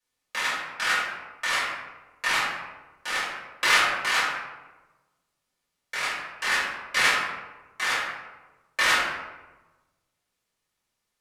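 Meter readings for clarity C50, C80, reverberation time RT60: 0.0 dB, 2.5 dB, 1.2 s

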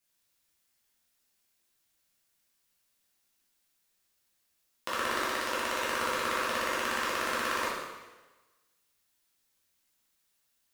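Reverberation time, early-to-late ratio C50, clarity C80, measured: 1.2 s, 1.0 dB, 3.5 dB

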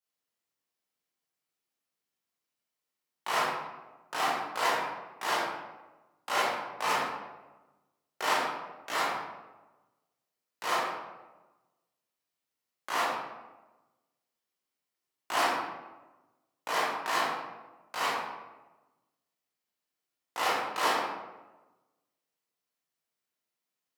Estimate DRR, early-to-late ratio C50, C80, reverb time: -10.0 dB, -1.5 dB, 2.0 dB, 1.2 s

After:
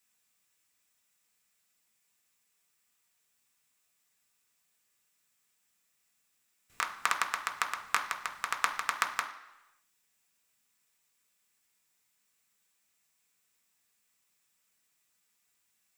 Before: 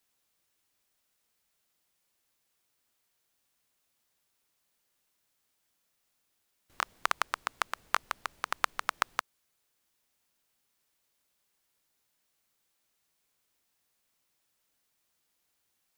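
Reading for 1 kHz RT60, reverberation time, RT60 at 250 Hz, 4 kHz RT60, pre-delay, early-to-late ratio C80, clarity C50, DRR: 1.0 s, 1.0 s, 0.85 s, 0.95 s, 3 ms, 13.5 dB, 10.5 dB, 2.0 dB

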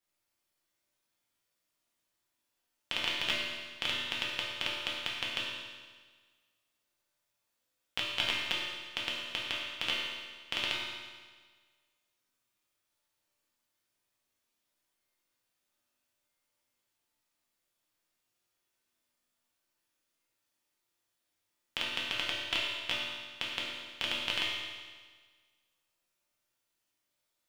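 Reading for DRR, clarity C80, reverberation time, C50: -5.5 dB, 2.0 dB, 1.5 s, -0.5 dB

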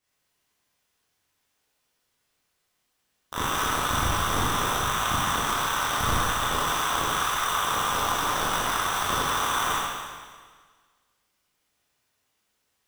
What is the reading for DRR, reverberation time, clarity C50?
-9.0 dB, 1.6 s, -2.5 dB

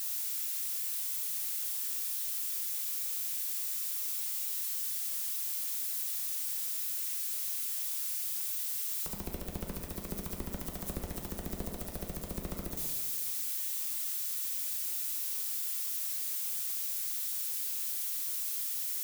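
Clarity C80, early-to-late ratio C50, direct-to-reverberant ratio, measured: 5.5 dB, 4.0 dB, 1.0 dB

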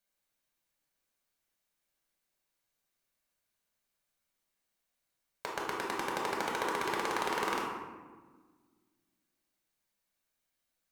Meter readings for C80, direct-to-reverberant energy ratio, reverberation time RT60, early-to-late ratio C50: 4.0 dB, -3.0 dB, 1.4 s, 1.5 dB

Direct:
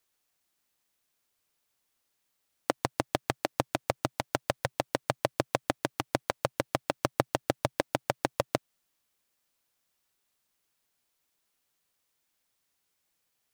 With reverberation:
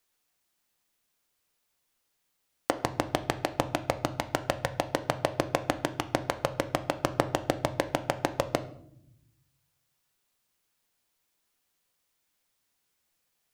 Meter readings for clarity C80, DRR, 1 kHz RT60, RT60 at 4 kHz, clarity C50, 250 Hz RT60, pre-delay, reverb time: 18.0 dB, 9.0 dB, 0.60 s, 0.50 s, 15.0 dB, 1.3 s, 4 ms, 0.70 s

